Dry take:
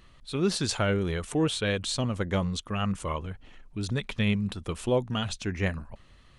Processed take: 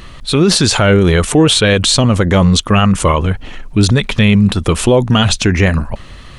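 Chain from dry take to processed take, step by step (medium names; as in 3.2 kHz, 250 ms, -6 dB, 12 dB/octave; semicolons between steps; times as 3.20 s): loudness maximiser +23 dB; trim -1 dB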